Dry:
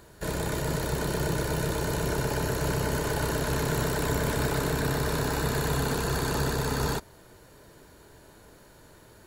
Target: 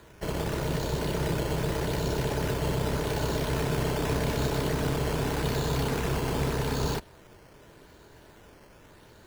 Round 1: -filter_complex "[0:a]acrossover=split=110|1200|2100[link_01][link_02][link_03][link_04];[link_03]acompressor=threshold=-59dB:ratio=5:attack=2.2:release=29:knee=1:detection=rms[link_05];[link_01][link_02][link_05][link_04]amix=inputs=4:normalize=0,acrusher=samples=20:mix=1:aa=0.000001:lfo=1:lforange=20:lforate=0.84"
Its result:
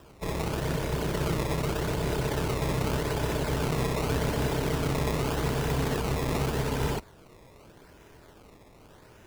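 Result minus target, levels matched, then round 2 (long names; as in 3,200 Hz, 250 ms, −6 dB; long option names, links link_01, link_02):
sample-and-hold swept by an LFO: distortion +4 dB
-filter_complex "[0:a]acrossover=split=110|1200|2100[link_01][link_02][link_03][link_04];[link_03]acompressor=threshold=-59dB:ratio=5:attack=2.2:release=29:knee=1:detection=rms[link_05];[link_01][link_02][link_05][link_04]amix=inputs=4:normalize=0,acrusher=samples=8:mix=1:aa=0.000001:lfo=1:lforange=8:lforate=0.84"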